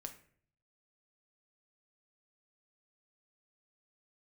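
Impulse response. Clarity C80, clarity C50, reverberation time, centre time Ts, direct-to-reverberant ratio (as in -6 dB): 15.5 dB, 11.0 dB, 0.55 s, 10 ms, 5.5 dB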